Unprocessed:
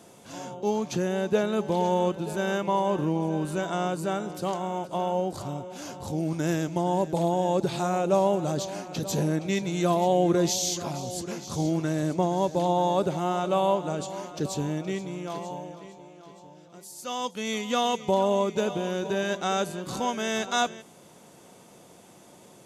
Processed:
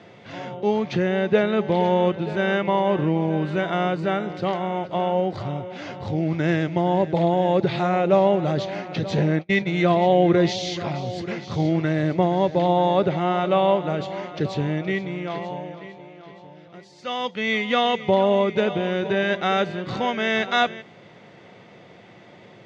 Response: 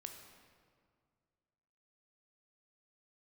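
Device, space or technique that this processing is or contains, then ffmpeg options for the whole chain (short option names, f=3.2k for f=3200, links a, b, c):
guitar cabinet: -filter_complex "[0:a]highpass=81,equalizer=f=110:t=q:w=4:g=7,equalizer=f=270:t=q:w=4:g=-4,equalizer=f=970:t=q:w=4:g=-4,equalizer=f=2k:t=q:w=4:g=10,lowpass=f=4k:w=0.5412,lowpass=f=4k:w=1.3066,asplit=3[a][b][c];[a]afade=t=out:st=9.22:d=0.02[d];[b]agate=range=-35dB:threshold=-27dB:ratio=16:detection=peak,afade=t=in:st=9.22:d=0.02,afade=t=out:st=9.65:d=0.02[e];[c]afade=t=in:st=9.65:d=0.02[f];[d][e][f]amix=inputs=3:normalize=0,volume=5.5dB"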